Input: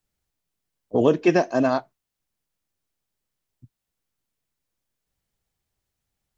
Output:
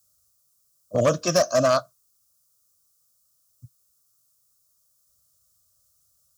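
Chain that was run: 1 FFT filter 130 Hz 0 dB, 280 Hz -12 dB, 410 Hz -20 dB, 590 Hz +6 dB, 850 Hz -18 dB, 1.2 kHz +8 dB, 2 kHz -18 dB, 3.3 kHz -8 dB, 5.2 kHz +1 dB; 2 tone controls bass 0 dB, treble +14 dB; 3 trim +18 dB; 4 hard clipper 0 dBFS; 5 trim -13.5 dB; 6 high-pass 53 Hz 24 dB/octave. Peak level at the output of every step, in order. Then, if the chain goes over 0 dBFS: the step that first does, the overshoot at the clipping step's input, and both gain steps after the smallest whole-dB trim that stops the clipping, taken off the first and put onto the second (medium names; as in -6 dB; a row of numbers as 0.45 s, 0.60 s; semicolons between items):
-11.5 dBFS, -10.0 dBFS, +8.0 dBFS, 0.0 dBFS, -13.5 dBFS, -10.5 dBFS; step 3, 8.0 dB; step 3 +10 dB, step 5 -5.5 dB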